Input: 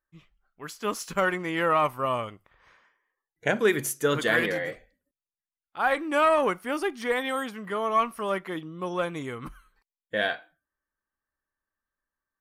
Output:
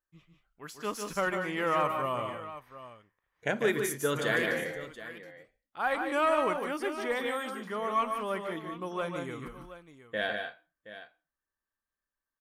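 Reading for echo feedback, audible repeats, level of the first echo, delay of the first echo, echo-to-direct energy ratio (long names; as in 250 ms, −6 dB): repeats not evenly spaced, 2, −6.5 dB, 149 ms, −4.5 dB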